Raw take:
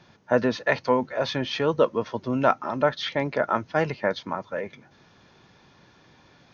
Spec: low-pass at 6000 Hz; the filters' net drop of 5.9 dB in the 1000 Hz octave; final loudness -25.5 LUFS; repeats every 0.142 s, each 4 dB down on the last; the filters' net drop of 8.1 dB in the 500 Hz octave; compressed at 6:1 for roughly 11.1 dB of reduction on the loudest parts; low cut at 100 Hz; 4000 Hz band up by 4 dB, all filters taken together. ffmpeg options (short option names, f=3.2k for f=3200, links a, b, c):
-af "highpass=100,lowpass=6k,equalizer=f=500:t=o:g=-8,equalizer=f=1k:t=o:g=-6,equalizer=f=4k:t=o:g=6,acompressor=threshold=-32dB:ratio=6,aecho=1:1:142|284|426|568|710|852|994|1136|1278:0.631|0.398|0.25|0.158|0.0994|0.0626|0.0394|0.0249|0.0157,volume=9dB"